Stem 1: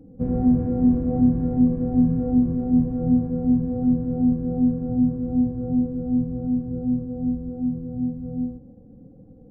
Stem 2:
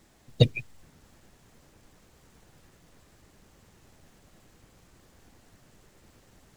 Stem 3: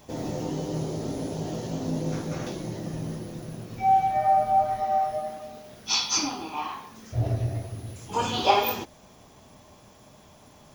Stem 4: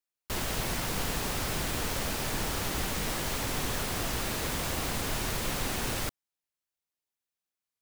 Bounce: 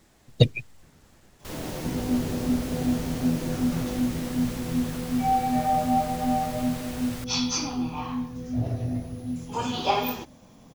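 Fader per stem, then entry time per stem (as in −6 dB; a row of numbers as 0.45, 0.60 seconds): −7.5, +1.5, −3.5, −7.0 decibels; 1.65, 0.00, 1.40, 1.15 seconds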